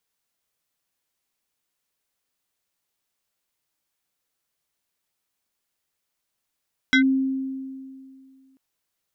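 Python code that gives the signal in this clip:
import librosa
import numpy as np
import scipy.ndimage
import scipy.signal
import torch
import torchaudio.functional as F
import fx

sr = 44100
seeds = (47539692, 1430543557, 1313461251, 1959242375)

y = fx.fm2(sr, length_s=1.64, level_db=-12.5, carrier_hz=266.0, ratio=6.75, index=1.8, index_s=0.1, decay_s=2.27, shape='linear')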